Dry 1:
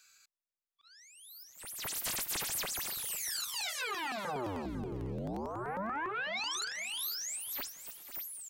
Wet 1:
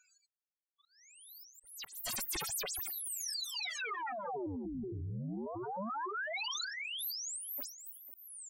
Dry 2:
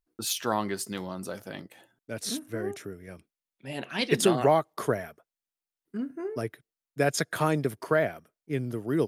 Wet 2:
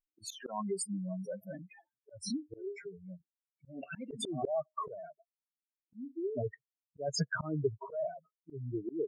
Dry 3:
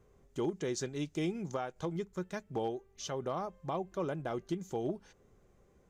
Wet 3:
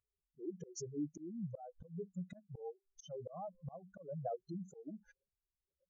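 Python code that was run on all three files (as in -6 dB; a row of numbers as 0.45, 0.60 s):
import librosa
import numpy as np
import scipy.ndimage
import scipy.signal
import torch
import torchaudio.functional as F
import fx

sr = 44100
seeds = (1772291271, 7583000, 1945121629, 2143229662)

y = fx.spec_expand(x, sr, power=3.6)
y = fx.noise_reduce_blind(y, sr, reduce_db=29)
y = fx.auto_swell(y, sr, attack_ms=257.0)
y = y * 10.0 ** (-1.0 / 20.0)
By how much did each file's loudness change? -2.0, -9.5, -9.0 LU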